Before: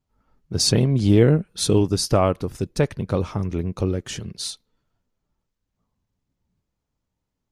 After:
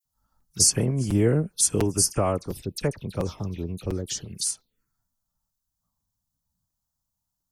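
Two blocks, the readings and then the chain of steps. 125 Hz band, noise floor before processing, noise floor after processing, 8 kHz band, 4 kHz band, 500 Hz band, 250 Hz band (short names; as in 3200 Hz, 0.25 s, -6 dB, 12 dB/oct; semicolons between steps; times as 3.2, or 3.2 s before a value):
-6.0 dB, -81 dBFS, -83 dBFS, +6.0 dB, -4.5 dB, -6.0 dB, -6.0 dB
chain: pre-emphasis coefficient 0.8; envelope phaser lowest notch 400 Hz, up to 3800 Hz, full sweep at -31 dBFS; dispersion lows, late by 52 ms, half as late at 2400 Hz; crackling interface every 0.70 s, samples 256, repeat, from 0.4; gain +8 dB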